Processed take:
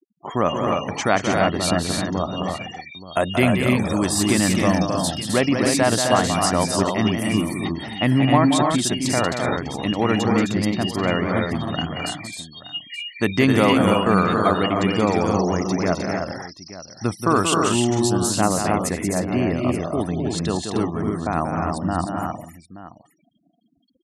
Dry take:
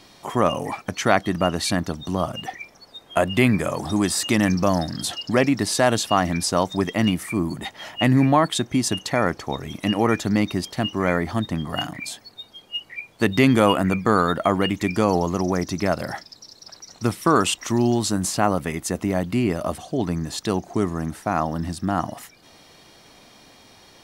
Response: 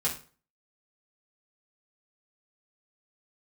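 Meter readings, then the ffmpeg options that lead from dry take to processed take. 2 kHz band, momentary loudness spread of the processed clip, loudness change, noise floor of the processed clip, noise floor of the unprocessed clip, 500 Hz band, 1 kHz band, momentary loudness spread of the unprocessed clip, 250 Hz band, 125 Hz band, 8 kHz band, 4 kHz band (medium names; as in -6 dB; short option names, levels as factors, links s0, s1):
+1.5 dB, 11 LU, +1.5 dB, -59 dBFS, -52 dBFS, +1.5 dB, +1.5 dB, 12 LU, +1.5 dB, +1.5 dB, +3.0 dB, +1.5 dB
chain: -filter_complex "[0:a]afftfilt=real='re*gte(hypot(re,im),0.0158)':imag='im*gte(hypot(re,im),0.0158)':win_size=1024:overlap=0.75,asplit=2[s0][s1];[s1]aecho=0:1:182|260|308|877:0.447|0.562|0.531|0.168[s2];[s0][s2]amix=inputs=2:normalize=0,adynamicequalizer=threshold=0.0112:dfrequency=7500:dqfactor=0.7:tfrequency=7500:tqfactor=0.7:attack=5:release=100:ratio=0.375:range=2:mode=boostabove:tftype=highshelf,volume=0.891"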